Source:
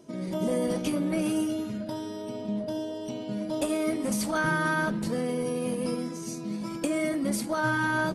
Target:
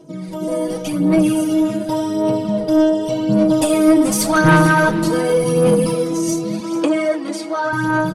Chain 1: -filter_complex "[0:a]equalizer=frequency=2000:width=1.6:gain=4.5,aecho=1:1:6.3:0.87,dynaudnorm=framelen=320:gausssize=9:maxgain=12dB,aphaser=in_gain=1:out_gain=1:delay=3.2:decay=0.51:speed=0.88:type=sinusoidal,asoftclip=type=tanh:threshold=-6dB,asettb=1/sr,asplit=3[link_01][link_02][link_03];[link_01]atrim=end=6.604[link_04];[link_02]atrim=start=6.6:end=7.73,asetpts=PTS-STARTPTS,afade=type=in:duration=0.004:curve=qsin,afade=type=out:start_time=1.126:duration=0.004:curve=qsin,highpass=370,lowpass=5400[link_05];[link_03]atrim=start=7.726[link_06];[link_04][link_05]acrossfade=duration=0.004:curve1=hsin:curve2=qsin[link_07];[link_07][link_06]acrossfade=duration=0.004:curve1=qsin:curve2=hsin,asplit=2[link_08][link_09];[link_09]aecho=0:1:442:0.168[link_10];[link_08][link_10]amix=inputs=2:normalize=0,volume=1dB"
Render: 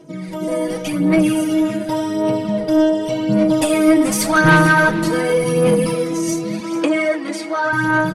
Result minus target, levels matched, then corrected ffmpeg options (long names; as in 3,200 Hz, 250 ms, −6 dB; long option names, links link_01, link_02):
2,000 Hz band +4.0 dB
-filter_complex "[0:a]equalizer=frequency=2000:width=1.6:gain=-3.5,aecho=1:1:6.3:0.87,dynaudnorm=framelen=320:gausssize=9:maxgain=12dB,aphaser=in_gain=1:out_gain=1:delay=3.2:decay=0.51:speed=0.88:type=sinusoidal,asoftclip=type=tanh:threshold=-6dB,asettb=1/sr,asplit=3[link_01][link_02][link_03];[link_01]atrim=end=6.604[link_04];[link_02]atrim=start=6.6:end=7.73,asetpts=PTS-STARTPTS,afade=type=in:duration=0.004:curve=qsin,afade=type=out:start_time=1.126:duration=0.004:curve=qsin,highpass=370,lowpass=5400[link_05];[link_03]atrim=start=7.726[link_06];[link_04][link_05]acrossfade=duration=0.004:curve1=hsin:curve2=qsin[link_07];[link_07][link_06]acrossfade=duration=0.004:curve1=qsin:curve2=hsin,asplit=2[link_08][link_09];[link_09]aecho=0:1:442:0.168[link_10];[link_08][link_10]amix=inputs=2:normalize=0,volume=1dB"